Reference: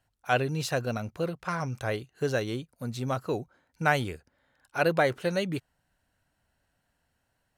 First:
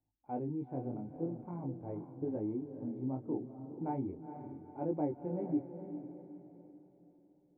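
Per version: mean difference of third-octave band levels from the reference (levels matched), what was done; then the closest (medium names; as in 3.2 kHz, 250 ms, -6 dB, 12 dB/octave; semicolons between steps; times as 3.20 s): 14.0 dB: cascade formant filter u; chorus 0.43 Hz, delay 19 ms, depth 5.4 ms; echo that smears into a reverb 464 ms, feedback 42%, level -9 dB; trim +5.5 dB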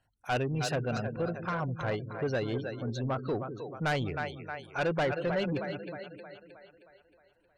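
8.0 dB: two-band feedback delay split 360 Hz, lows 196 ms, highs 313 ms, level -9 dB; spectral gate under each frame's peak -25 dB strong; saturation -24 dBFS, distortion -10 dB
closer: second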